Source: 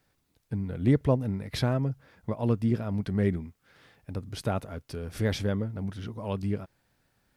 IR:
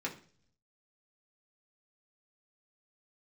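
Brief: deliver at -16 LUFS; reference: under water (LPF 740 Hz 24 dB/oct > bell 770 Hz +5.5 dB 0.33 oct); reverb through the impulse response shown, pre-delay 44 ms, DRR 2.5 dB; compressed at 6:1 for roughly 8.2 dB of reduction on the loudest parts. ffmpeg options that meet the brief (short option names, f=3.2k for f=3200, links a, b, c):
-filter_complex "[0:a]acompressor=threshold=-26dB:ratio=6,asplit=2[a][b];[1:a]atrim=start_sample=2205,adelay=44[c];[b][c]afir=irnorm=-1:irlink=0,volume=-5.5dB[d];[a][d]amix=inputs=2:normalize=0,lowpass=f=740:w=0.5412,lowpass=f=740:w=1.3066,equalizer=f=770:t=o:w=0.33:g=5.5,volume=15.5dB"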